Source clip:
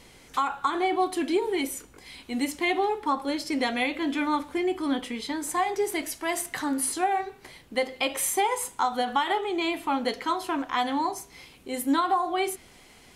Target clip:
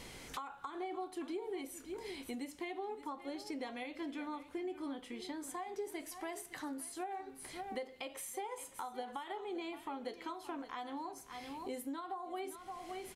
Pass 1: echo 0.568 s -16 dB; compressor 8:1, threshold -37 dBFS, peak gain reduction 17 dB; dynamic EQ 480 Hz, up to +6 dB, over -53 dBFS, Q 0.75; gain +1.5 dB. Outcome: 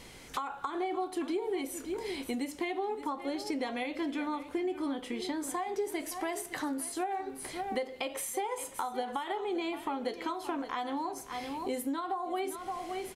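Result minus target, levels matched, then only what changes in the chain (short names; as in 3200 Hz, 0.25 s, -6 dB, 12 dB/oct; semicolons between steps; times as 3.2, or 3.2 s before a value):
compressor: peak gain reduction -8 dB
change: compressor 8:1, threshold -46 dBFS, peak gain reduction 25 dB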